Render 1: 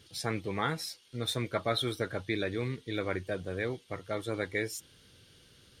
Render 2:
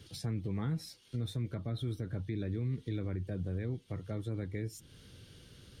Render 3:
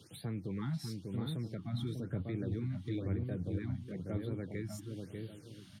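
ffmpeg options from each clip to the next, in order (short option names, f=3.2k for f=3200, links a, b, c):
-filter_complex "[0:a]lowshelf=f=340:g=8.5,acrossover=split=280[a][b];[b]acompressor=threshold=-45dB:ratio=5[c];[a][c]amix=inputs=2:normalize=0,alimiter=level_in=3dB:limit=-24dB:level=0:latency=1:release=75,volume=-3dB"
-filter_complex "[0:a]asplit=2[a][b];[b]adelay=595,lowpass=f=1.2k:p=1,volume=-3dB,asplit=2[c][d];[d]adelay=595,lowpass=f=1.2k:p=1,volume=0.35,asplit=2[e][f];[f]adelay=595,lowpass=f=1.2k:p=1,volume=0.35,asplit=2[g][h];[h]adelay=595,lowpass=f=1.2k:p=1,volume=0.35,asplit=2[i][j];[j]adelay=595,lowpass=f=1.2k:p=1,volume=0.35[k];[a][c][e][g][i][k]amix=inputs=6:normalize=0,acrossover=split=100|6400[l][m][n];[l]acrusher=bits=5:mix=0:aa=0.5[o];[o][m][n]amix=inputs=3:normalize=0,afftfilt=real='re*(1-between(b*sr/1024,400*pow(6900/400,0.5+0.5*sin(2*PI*1*pts/sr))/1.41,400*pow(6900/400,0.5+0.5*sin(2*PI*1*pts/sr))*1.41))':imag='im*(1-between(b*sr/1024,400*pow(6900/400,0.5+0.5*sin(2*PI*1*pts/sr))/1.41,400*pow(6900/400,0.5+0.5*sin(2*PI*1*pts/sr))*1.41))':win_size=1024:overlap=0.75,volume=-1dB"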